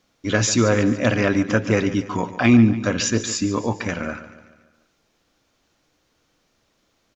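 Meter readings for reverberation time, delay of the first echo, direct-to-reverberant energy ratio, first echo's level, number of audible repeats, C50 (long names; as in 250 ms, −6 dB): no reverb audible, 144 ms, no reverb audible, −14.0 dB, 4, no reverb audible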